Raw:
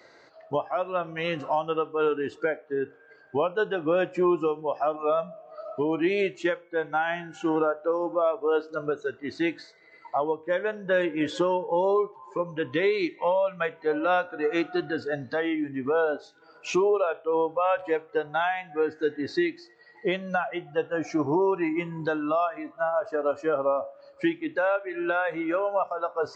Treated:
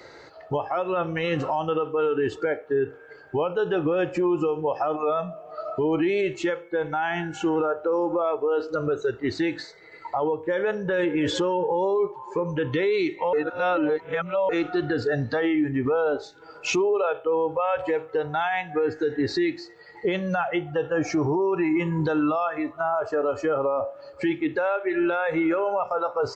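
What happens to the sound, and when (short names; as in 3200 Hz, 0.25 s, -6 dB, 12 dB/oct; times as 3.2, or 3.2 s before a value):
13.33–14.49 reverse
whole clip: low shelf 140 Hz +11.5 dB; comb 2.3 ms, depth 33%; limiter -23.5 dBFS; gain +7 dB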